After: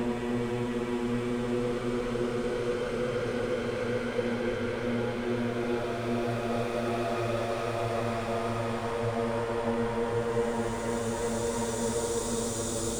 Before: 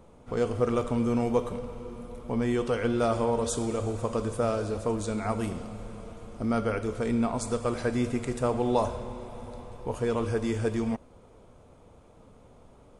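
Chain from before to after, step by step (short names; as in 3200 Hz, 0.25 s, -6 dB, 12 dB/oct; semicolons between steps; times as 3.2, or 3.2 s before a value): hard clip -27.5 dBFS, distortion -8 dB; Paulstretch 12×, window 0.50 s, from 2.45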